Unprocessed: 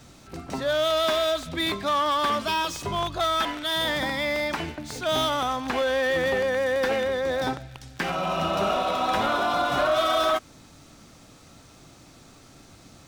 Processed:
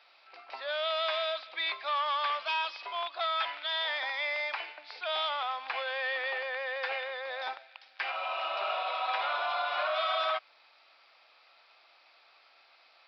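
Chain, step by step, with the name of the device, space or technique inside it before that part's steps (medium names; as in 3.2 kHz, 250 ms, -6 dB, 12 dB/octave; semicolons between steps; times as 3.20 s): musical greeting card (resampled via 11.025 kHz; high-pass 660 Hz 24 dB/octave; peaking EQ 2.4 kHz +7 dB 0.39 oct); trim -6.5 dB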